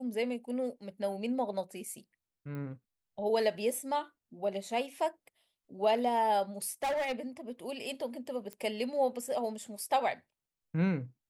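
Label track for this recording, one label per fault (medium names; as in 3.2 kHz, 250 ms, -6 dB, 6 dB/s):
2.550000	2.550000	pop -31 dBFS
6.620000	7.120000	clipped -29 dBFS
8.530000	8.530000	pop -26 dBFS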